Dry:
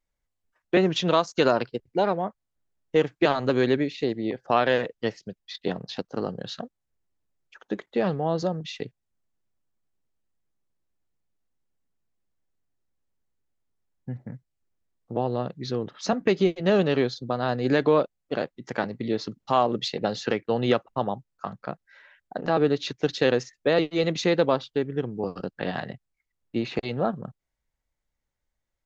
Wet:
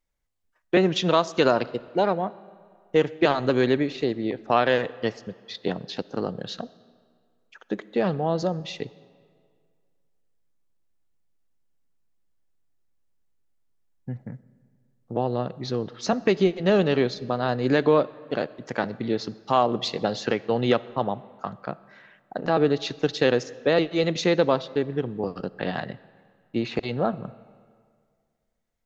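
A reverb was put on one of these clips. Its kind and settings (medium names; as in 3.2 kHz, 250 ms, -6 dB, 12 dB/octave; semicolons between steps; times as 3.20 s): algorithmic reverb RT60 2 s, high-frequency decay 0.75×, pre-delay 15 ms, DRR 19 dB; trim +1 dB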